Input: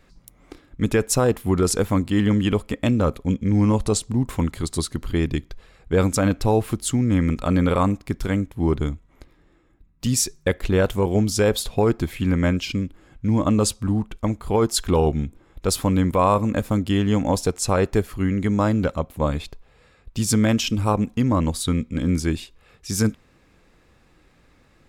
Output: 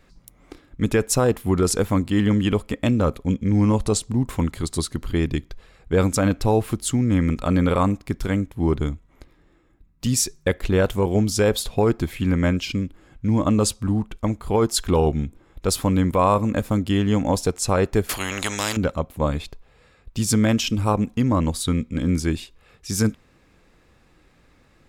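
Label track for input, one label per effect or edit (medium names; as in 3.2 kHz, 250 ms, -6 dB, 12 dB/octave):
18.090000	18.770000	spectrum-flattening compressor 4:1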